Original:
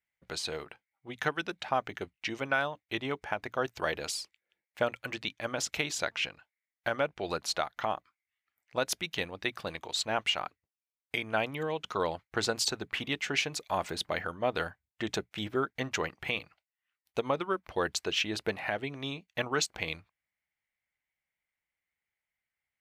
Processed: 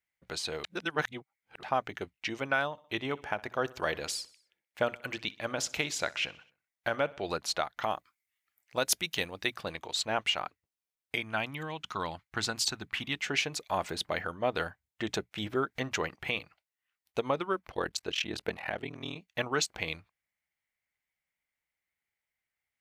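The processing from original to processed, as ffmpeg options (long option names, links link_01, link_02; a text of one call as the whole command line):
ffmpeg -i in.wav -filter_complex "[0:a]asettb=1/sr,asplit=3[link_01][link_02][link_03];[link_01]atrim=end=2.654[link_04];[link_02]atrim=start=2.65:end=7.22,asetpts=PTS-STARTPTS,afade=type=in:duration=0.004:curve=qsin,afade=type=out:start_time=4.566:duration=0.004:curve=qsin,aecho=1:1:63|126|189|252:0.0841|0.0471|0.0264|0.0148,atrim=end_sample=201537[link_05];[link_03]atrim=start=7.216[link_06];[link_04][link_05]acrossfade=duration=0.004:curve1=hsin:curve2=qsin[link_07];[link_07][link_06]acrossfade=duration=0.004:curve1=qsin:curve2=hsin,asettb=1/sr,asplit=3[link_08][link_09][link_10];[link_08]atrim=end=7.824[link_11];[link_09]atrim=start=7.82:end=9.54,asetpts=PTS-STARTPTS,afade=type=in:duration=0.004:curve=qsin,afade=type=out:start_time=1.716:duration=0.004:curve=qsin,aemphasis=mode=production:type=cd[link_12];[link_10]atrim=start=9.536[link_13];[link_11][link_12]acrossfade=duration=0.004:curve1=hsin:curve2=qsin[link_14];[link_14][link_13]acrossfade=duration=0.004:curve1=qsin:curve2=hsin,asettb=1/sr,asplit=3[link_15][link_16][link_17];[link_15]atrim=end=11.214[link_18];[link_16]atrim=start=11.21:end=13.2,asetpts=PTS-STARTPTS,afade=type=in:duration=0.004:curve=qsin,afade=type=out:start_time=1.986:duration=0.004:curve=qsin,equalizer=frequency=480:width=1.5:gain=-10.5[link_19];[link_17]atrim=start=13.196[link_20];[link_18][link_19]acrossfade=duration=0.004:curve1=hsin:curve2=qsin[link_21];[link_21][link_20]acrossfade=duration=0.004:curve1=qsin:curve2=hsin,asettb=1/sr,asplit=3[link_22][link_23][link_24];[link_22]atrim=end=15.444[link_25];[link_23]atrim=start=15.44:end=16.16,asetpts=PTS-STARTPTS,afade=type=in:duration=0.004:curve=qsin,afade=type=out:start_time=0.716:duration=0.004:curve=qsin,acompressor=mode=upward:threshold=-34dB:ratio=2.5:attack=3.2:release=140:knee=2.83:detection=peak[link_26];[link_24]atrim=start=16.156[link_27];[link_25][link_26]acrossfade=duration=0.004:curve1=hsin:curve2=qsin[link_28];[link_28][link_27]acrossfade=duration=0.004:curve1=qsin:curve2=hsin,asettb=1/sr,asplit=3[link_29][link_30][link_31];[link_29]atrim=end=17.704[link_32];[link_30]atrim=start=17.7:end=19.16,asetpts=PTS-STARTPTS,afade=type=in:duration=0.004:curve=qsin,afade=type=out:start_time=1.456:duration=0.004:curve=qsin,aeval=exprs='val(0)*sin(2*PI*20*n/s)':channel_layout=same[link_33];[link_31]atrim=start=19.156[link_34];[link_32][link_33]acrossfade=duration=0.004:curve1=hsin:curve2=qsin[link_35];[link_35][link_34]acrossfade=duration=0.004:curve1=qsin:curve2=hsin,asplit=3[link_36][link_37][link_38];[link_36]atrim=end=0.642[link_39];[link_37]atrim=start=0.638:end=1.632,asetpts=PTS-STARTPTS,areverse[link_40];[link_38]atrim=start=1.628[link_41];[link_39][link_40]acrossfade=duration=0.004:curve1=hsin:curve2=hsin[link_42];[link_42][link_41]acrossfade=duration=0.004:curve1=hsin:curve2=hsin" out.wav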